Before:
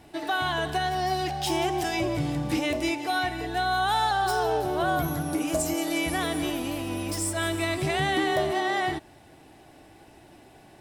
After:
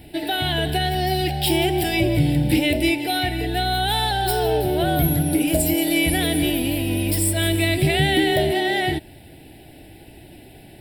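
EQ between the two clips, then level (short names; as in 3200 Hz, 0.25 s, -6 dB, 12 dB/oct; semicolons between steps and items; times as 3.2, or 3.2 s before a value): low shelf 150 Hz +6.5 dB; high shelf 5700 Hz +10 dB; fixed phaser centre 2800 Hz, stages 4; +7.5 dB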